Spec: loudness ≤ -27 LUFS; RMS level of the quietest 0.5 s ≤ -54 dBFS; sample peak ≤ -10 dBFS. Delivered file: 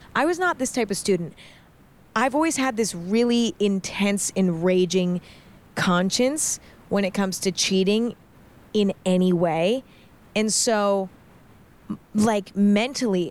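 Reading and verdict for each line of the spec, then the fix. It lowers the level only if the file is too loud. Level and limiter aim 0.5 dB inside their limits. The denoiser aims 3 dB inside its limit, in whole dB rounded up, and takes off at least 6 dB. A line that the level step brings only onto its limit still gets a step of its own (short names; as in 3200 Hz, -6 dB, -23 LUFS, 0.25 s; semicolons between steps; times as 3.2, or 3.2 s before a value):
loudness -22.5 LUFS: fail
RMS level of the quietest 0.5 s -52 dBFS: fail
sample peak -8.0 dBFS: fail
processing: gain -5 dB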